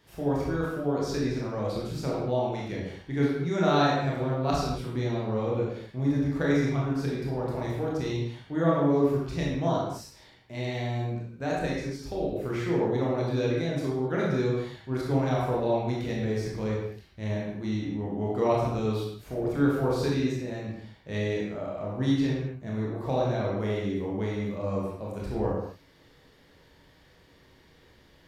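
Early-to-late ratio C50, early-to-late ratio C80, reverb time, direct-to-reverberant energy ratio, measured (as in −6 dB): 0.0 dB, 2.5 dB, non-exponential decay, −5.0 dB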